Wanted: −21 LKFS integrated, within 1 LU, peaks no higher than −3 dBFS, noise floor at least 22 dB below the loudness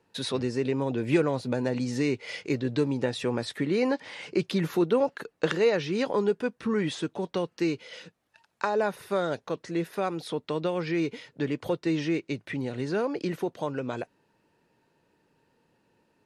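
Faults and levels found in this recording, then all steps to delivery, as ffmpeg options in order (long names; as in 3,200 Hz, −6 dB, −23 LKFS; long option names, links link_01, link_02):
integrated loudness −29.0 LKFS; sample peak −10.0 dBFS; target loudness −21.0 LKFS
→ -af "volume=8dB,alimiter=limit=-3dB:level=0:latency=1"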